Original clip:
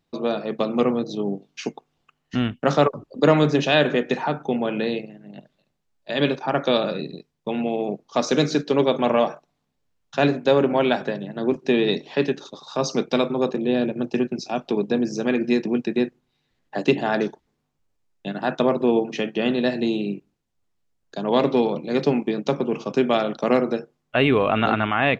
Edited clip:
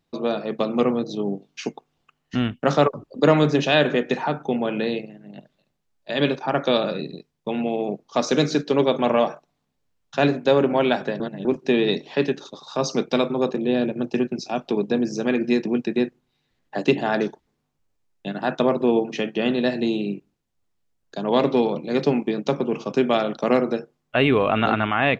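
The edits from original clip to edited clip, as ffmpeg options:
-filter_complex "[0:a]asplit=3[a][b][c];[a]atrim=end=11.202[d];[b]atrim=start=11.198:end=11.452,asetpts=PTS-STARTPTS,areverse[e];[c]atrim=start=11.448[f];[d][e]acrossfade=d=0.004:c1=hsin:c2=hsin[g];[g][f]acrossfade=d=0.004:c1=hsin:c2=hsin"

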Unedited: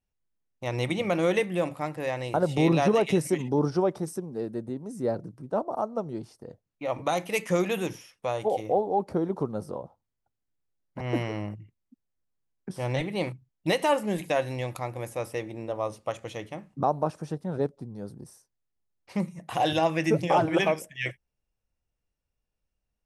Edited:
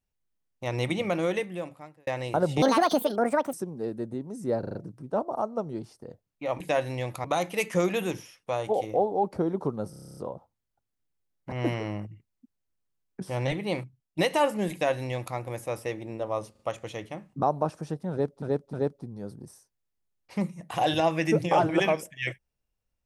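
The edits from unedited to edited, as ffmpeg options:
-filter_complex "[0:a]asplit=24[a][b][c][d][e][f][g][h][i][j][k][l][m][n][o][p][q][r][s][t][u][v][w][x];[a]atrim=end=2.07,asetpts=PTS-STARTPTS,afade=t=out:st=0.94:d=1.13[y];[b]atrim=start=2.07:end=2.624,asetpts=PTS-STARTPTS,afade=t=in:d=0.004:c=hsin[z];[c]atrim=start=2.62:end=4.09,asetpts=PTS-STARTPTS,asetrate=71001,aresample=44100,atrim=end_sample=40265,asetpts=PTS-STARTPTS[aa];[d]atrim=start=4.086:end=5.192[ab];[e]atrim=start=5.148:end=5.192[ac];[f]atrim=start=5.148:end=5.192[ad];[g]atrim=start=5.148:end=5.192[ae];[h]atrim=start=5.148:end=7.002[af];[i]atrim=start=14.208:end=14.852[ag];[j]atrim=start=6.998:end=9.692[ah];[k]atrim=start=9.658:end=9.692[ai];[l]atrim=start=9.658:end=9.692[aj];[m]atrim=start=9.658:end=9.692[ak];[n]atrim=start=9.658:end=9.692[al];[o]atrim=start=9.658:end=9.692[am];[p]atrim=start=9.658:end=9.692[an];[q]atrim=start=9.658:end=9.692[ao];[r]atrim=start=9.658:end=9.692[ap];[s]atrim=start=9.658:end=13.67,asetpts=PTS-STARTPTS,afade=t=out:st=3.512:d=0.5:silence=0.501187[aq];[t]atrim=start=13.67:end=16.042,asetpts=PTS-STARTPTS,afade=t=in:d=0.004:c=hsin:silence=0.501187[ar];[u]atrim=start=15.998:end=16.042[as];[v]atrim=start=15.998:end=17.832[at];[w]atrim=start=17.518:end=17.832[au];[x]atrim=start=17.518[av];[y][z]concat=n=2:v=0:a=1[aw];[aw][aa]acrossfade=d=0.004:c1=hsin:c2=hsin[ax];[ax][ab]acrossfade=d=0.004:c1=hsin:c2=hsin[ay];[ay][ac]acrossfade=d=0.004:c1=hsin:c2=hsin[az];[az][ad]acrossfade=d=0.004:c1=hsin:c2=hsin[ba];[ba][ae]acrossfade=d=0.004:c1=hsin:c2=hsin[bb];[bb][af]acrossfade=d=0.004:c1=hsin:c2=hsin[bc];[bc][ag]acrossfade=d=0.004:c1=hsin:c2=hsin[bd];[bd][ah]acrossfade=d=0.004:c1=hsin:c2=hsin[be];[be][ai]acrossfade=d=0.004:c1=hsin:c2=hsin[bf];[bf][aj]acrossfade=d=0.004:c1=hsin:c2=hsin[bg];[bg][ak]acrossfade=d=0.004:c1=hsin:c2=hsin[bh];[bh][al]acrossfade=d=0.004:c1=hsin:c2=hsin[bi];[bi][am]acrossfade=d=0.004:c1=hsin:c2=hsin[bj];[bj][an]acrossfade=d=0.004:c1=hsin:c2=hsin[bk];[bk][ao]acrossfade=d=0.004:c1=hsin:c2=hsin[bl];[bl][ap]acrossfade=d=0.004:c1=hsin:c2=hsin[bm];[aq][ar]concat=n=2:v=0:a=1[bn];[bm][bn]acrossfade=d=0.004:c1=hsin:c2=hsin[bo];[bo][as]acrossfade=d=0.004:c1=hsin:c2=hsin[bp];[bp][at]acrossfade=d=0.004:c1=hsin:c2=hsin[bq];[bq][au]acrossfade=d=0.004:c1=hsin:c2=hsin[br];[br][av]acrossfade=d=0.004:c1=hsin:c2=hsin"

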